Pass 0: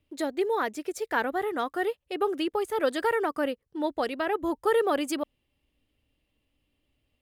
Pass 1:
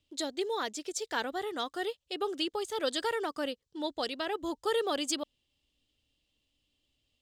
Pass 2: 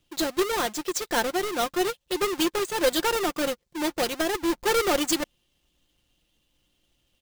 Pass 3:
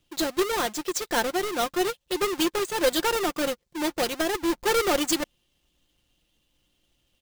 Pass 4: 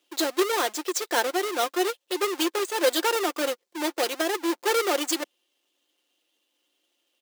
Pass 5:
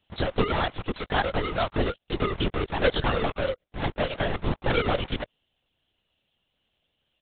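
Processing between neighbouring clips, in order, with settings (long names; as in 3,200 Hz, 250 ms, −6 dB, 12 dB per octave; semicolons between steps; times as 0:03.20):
flat-topped bell 5,000 Hz +13 dB; level −6.5 dB
each half-wave held at its own peak; comb filter 5.7 ms, depth 44%; level +3 dB
no processing that can be heard
inverse Chebyshev high-pass filter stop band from 150 Hz, stop band 40 dB; speech leveller 2 s
linear-prediction vocoder at 8 kHz whisper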